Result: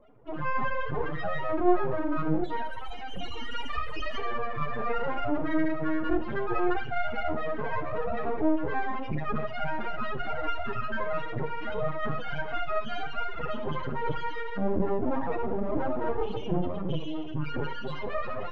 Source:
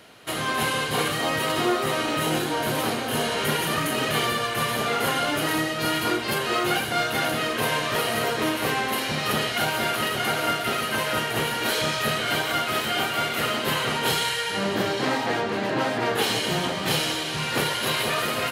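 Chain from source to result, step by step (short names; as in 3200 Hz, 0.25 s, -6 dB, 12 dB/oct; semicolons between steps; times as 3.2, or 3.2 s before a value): 2.44–4.18 tilt +4.5 dB/oct; loudest bins only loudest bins 4; half-wave rectifier; tape spacing loss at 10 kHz 43 dB; non-linear reverb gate 0.21 s falling, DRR 9.5 dB; gain +8 dB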